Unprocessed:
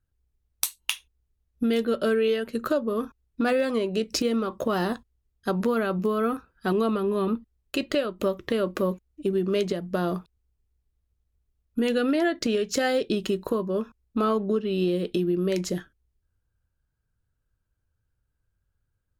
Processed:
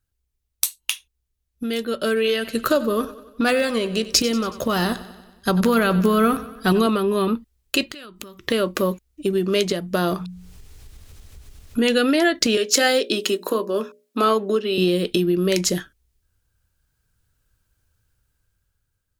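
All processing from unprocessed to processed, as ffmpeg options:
-filter_complex "[0:a]asettb=1/sr,asplit=3[s0][s1][s2];[s0]atrim=end=2.074[s3];[s1]atrim=start=2.07:end=6.87,asetpts=PTS-STARTPTS,afade=t=in:d=0.004:c=qsin,afade=t=out:st=4.796:d=0.004:c=qsin,asubboost=boost=2.5:cutoff=200,aecho=1:1:93|186|279|372|465|558:0.158|0.0919|0.0533|0.0309|0.0179|0.0104,atrim=end_sample=211680[s4];[s2]atrim=start=6.866[s5];[s3][s4]acrossfade=d=0.004:c1=hsin:c2=qsin[s6];[s6][s5]acrossfade=d=0.004:c1=qsin:c2=hsin,asettb=1/sr,asplit=3[s7][s8][s9];[s7]atrim=end=7.894[s10];[s8]atrim=start=7.89:end=8.45,asetpts=PTS-STARTPTS,afade=t=in:d=0.004:c=qsin,afade=t=out:st=0.556:d=0.004:c=qsin,equalizer=f=570:w=2.2:g=-11,acompressor=threshold=0.00794:ratio=6:attack=3.2:release=140:knee=1:detection=peak[s11];[s9]atrim=start=8.446[s12];[s10][s11]acrossfade=d=0.004:c1=hsin:c2=qsin[s13];[s13][s12]acrossfade=d=0.004:c1=qsin:c2=hsin,asettb=1/sr,asplit=3[s14][s15][s16];[s14]atrim=end=10.134[s17];[s15]atrim=start=10.13:end=11.95,asetpts=PTS-STARTPTS,afade=t=in:d=0.004:c=qsin,afade=t=out:st=1.816:d=0.004:c=qsin,highshelf=f=11000:g=-11,bandreject=f=60:t=h:w=6,bandreject=f=120:t=h:w=6,bandreject=f=180:t=h:w=6,acompressor=mode=upward:threshold=0.0447:ratio=2.5:attack=3.2:release=140:knee=2.83:detection=peak[s18];[s16]atrim=start=11.946[s19];[s17][s18]acrossfade=d=0.004:c1=hsin:c2=qsin[s20];[s20][s19]acrossfade=d=0.004:c1=qsin:c2=hsin,asettb=1/sr,asplit=3[s21][s22][s23];[s21]atrim=end=12.574[s24];[s22]atrim=start=12.57:end=14.78,asetpts=PTS-STARTPTS,afade=t=in:d=0.004:c=qsin,afade=t=out:st=2.206:d=0.004:c=qsin,highpass=f=240:w=0.5412,highpass=f=240:w=1.3066,bandreject=f=60:t=h:w=6,bandreject=f=120:t=h:w=6,bandreject=f=180:t=h:w=6,bandreject=f=240:t=h:w=6,bandreject=f=300:t=h:w=6,bandreject=f=360:t=h:w=6,bandreject=f=420:t=h:w=6,bandreject=f=480:t=h:w=6,bandreject=f=540:t=h:w=6,bandreject=f=600:t=h:w=6[s25];[s23]atrim=start=14.776[s26];[s24][s25]acrossfade=d=0.004:c1=hsin:c2=qsin[s27];[s27][s26]acrossfade=d=0.004:c1=qsin:c2=hsin,highshelf=f=2000:g=10,dynaudnorm=f=270:g=9:m=2.82,volume=0.891"

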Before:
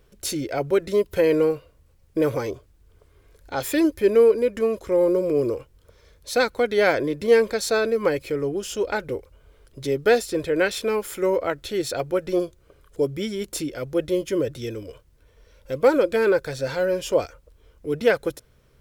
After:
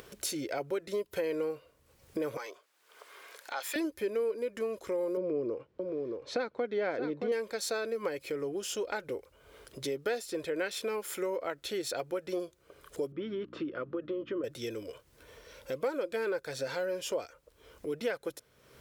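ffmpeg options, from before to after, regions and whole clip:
-filter_complex "[0:a]asettb=1/sr,asplit=3[s0][s1][s2];[s0]atrim=end=2.374[s3];[s1]atrim=start=2.37:end=3.76,asetpts=PTS-STARTPTS,afade=t=in:d=0.004:c=qsin,afade=t=out:st=1.386:d=0.004:c=qsin,highpass=880,highshelf=f=4900:g=-6[s4];[s2]atrim=start=3.756[s5];[s3][s4]acrossfade=d=0.004:c1=hsin:c2=qsin[s6];[s6][s5]acrossfade=d=0.004:c1=qsin:c2=hsin,asettb=1/sr,asplit=3[s7][s8][s9];[s7]atrim=end=5.174[s10];[s8]atrim=start=5.17:end=7.32,asetpts=PTS-STARTPTS,afade=t=in:d=0.004:c=qsin,afade=t=out:st=2.146:d=0.004:c=qsin,highpass=190,lowpass=5900,aemphasis=mode=reproduction:type=riaa,aecho=1:1:623:0.335,atrim=end_sample=94815[s11];[s9]atrim=start=7.316[s12];[s10][s11]acrossfade=d=0.004:c1=hsin:c2=qsin[s13];[s13][s12]acrossfade=d=0.004:c1=qsin:c2=hsin,asettb=1/sr,asplit=3[s14][s15][s16];[s14]atrim=end=13.124[s17];[s15]atrim=start=13.12:end=14.44,asetpts=PTS-STARTPTS,afade=t=in:d=0.004:c=qsin,afade=t=out:st=1.316:d=0.004:c=qsin,acompressor=threshold=0.0631:ratio=6:attack=3.2:release=140:knee=1:detection=peak,aeval=exprs='val(0)+0.01*(sin(2*PI*60*n/s)+sin(2*PI*2*60*n/s)/2+sin(2*PI*3*60*n/s)/3+sin(2*PI*4*60*n/s)/4+sin(2*PI*5*60*n/s)/5)':c=same,highpass=120,equalizer=f=330:t=q:w=4:g=5,equalizer=f=770:t=q:w=4:g=-9,equalizer=f=1200:t=q:w=4:g=9,equalizer=f=2200:t=q:w=4:g=-9,lowpass=f=2700:w=0.5412,lowpass=f=2700:w=1.3066[s18];[s16]atrim=start=14.436[s19];[s17][s18]acrossfade=d=0.004:c1=hsin:c2=qsin[s20];[s20][s19]acrossfade=d=0.004:c1=qsin:c2=hsin,acompressor=mode=upward:threshold=0.0224:ratio=2.5,highpass=f=340:p=1,acompressor=threshold=0.0282:ratio=3,volume=0.794"

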